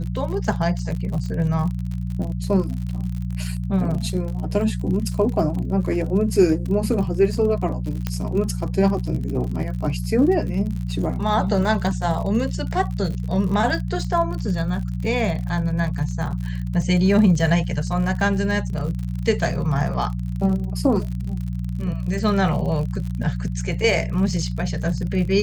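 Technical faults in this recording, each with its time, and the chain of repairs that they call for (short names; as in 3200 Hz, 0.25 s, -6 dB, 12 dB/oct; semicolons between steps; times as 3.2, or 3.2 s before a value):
crackle 54/s -29 dBFS
hum 60 Hz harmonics 3 -26 dBFS
8.07 pop -10 dBFS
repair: de-click; de-hum 60 Hz, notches 3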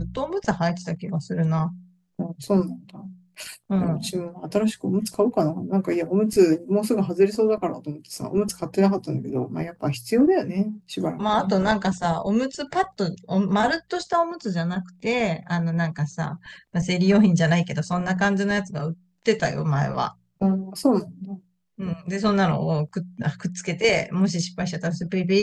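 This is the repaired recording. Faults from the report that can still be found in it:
none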